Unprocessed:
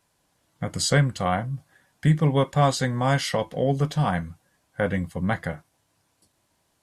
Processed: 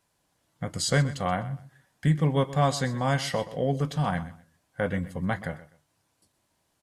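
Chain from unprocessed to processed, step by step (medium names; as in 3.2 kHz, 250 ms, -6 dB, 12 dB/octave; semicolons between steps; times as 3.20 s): feedback delay 126 ms, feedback 23%, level -16 dB; trim -3.5 dB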